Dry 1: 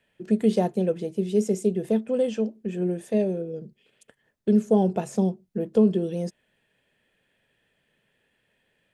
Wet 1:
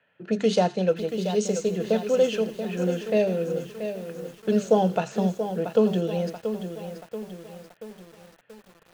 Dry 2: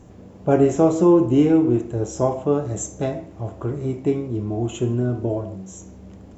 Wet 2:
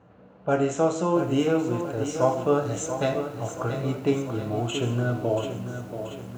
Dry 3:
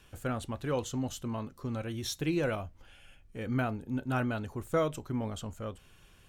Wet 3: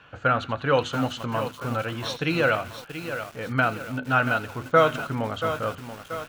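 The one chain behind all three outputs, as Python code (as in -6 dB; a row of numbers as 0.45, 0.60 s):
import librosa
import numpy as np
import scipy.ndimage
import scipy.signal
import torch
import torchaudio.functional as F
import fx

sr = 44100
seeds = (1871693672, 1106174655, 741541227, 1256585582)

y = fx.env_lowpass(x, sr, base_hz=1700.0, full_db=-16.0)
y = fx.peak_eq(y, sr, hz=380.0, db=-9.0, octaves=0.2)
y = fx.hum_notches(y, sr, base_hz=50, count=8)
y = fx.rider(y, sr, range_db=3, speed_s=2.0)
y = fx.echo_wet_highpass(y, sr, ms=84, feedback_pct=51, hz=1700.0, wet_db=-14.0)
y = np.repeat(y[::3], 3)[:len(y)]
y = fx.cabinet(y, sr, low_hz=140.0, low_slope=12, high_hz=7900.0, hz=(220.0, 320.0, 1400.0, 2800.0, 4200.0, 6500.0), db=(-8, -4, 8, 6, 9, 7))
y = fx.echo_crushed(y, sr, ms=682, feedback_pct=55, bits=8, wet_db=-9.0)
y = y * 10.0 ** (-26 / 20.0) / np.sqrt(np.mean(np.square(y)))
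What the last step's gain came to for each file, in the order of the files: +3.5, -0.5, +10.0 dB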